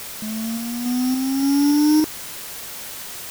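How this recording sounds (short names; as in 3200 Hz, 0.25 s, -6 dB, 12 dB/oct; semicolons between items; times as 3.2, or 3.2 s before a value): a buzz of ramps at a fixed pitch in blocks of 8 samples; random-step tremolo; a quantiser's noise floor 6-bit, dither triangular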